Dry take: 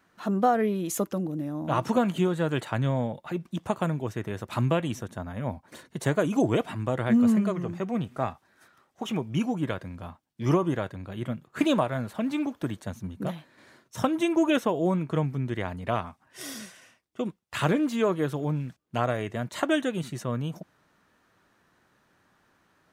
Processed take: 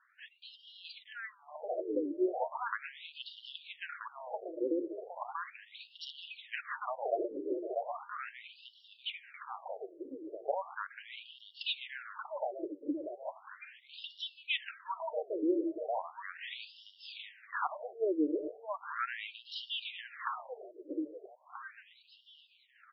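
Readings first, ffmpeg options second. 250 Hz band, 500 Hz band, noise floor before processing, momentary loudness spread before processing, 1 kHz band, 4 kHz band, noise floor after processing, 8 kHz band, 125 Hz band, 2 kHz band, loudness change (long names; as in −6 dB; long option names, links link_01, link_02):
−13.5 dB, −8.5 dB, −67 dBFS, 12 LU, −8.5 dB, −1.5 dB, −64 dBFS, below −35 dB, below −40 dB, −5.5 dB, −11.0 dB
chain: -af "equalizer=frequency=125:width_type=o:width=1:gain=10,equalizer=frequency=250:width_type=o:width=1:gain=5,equalizer=frequency=500:width_type=o:width=1:gain=-10,equalizer=frequency=8000:width_type=o:width=1:gain=5,aeval=exprs='0.282*(abs(mod(val(0)/0.282+3,4)-2)-1)':channel_layout=same,aecho=1:1:641|1282|1923|2564|3205|3846|4487:0.668|0.348|0.181|0.094|0.0489|0.0254|0.0132,afftfilt=real='re*between(b*sr/1024,410*pow(4000/410,0.5+0.5*sin(2*PI*0.37*pts/sr))/1.41,410*pow(4000/410,0.5+0.5*sin(2*PI*0.37*pts/sr))*1.41)':imag='im*between(b*sr/1024,410*pow(4000/410,0.5+0.5*sin(2*PI*0.37*pts/sr))/1.41,410*pow(4000/410,0.5+0.5*sin(2*PI*0.37*pts/sr))*1.41)':win_size=1024:overlap=0.75"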